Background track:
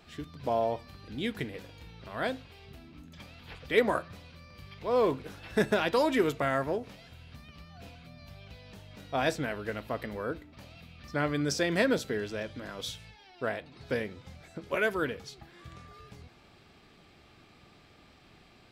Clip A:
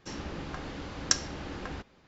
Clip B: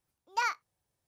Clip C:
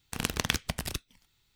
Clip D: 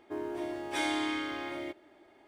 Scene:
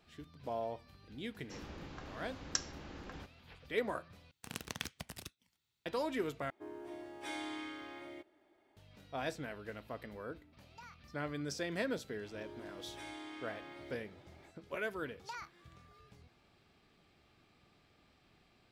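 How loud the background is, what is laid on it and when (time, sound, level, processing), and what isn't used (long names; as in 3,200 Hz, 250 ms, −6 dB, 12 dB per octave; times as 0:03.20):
background track −10.5 dB
0:01.44: mix in A −10 dB
0:04.31: overwrite with C −13 dB + high-pass filter 84 Hz
0:06.50: overwrite with D −11 dB
0:10.41: mix in B −17.5 dB + downward compressor 4 to 1, threshold −33 dBFS
0:12.24: mix in D −17 dB + envelope flattener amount 50%
0:14.92: mix in B −5.5 dB + downward compressor, threshold −36 dBFS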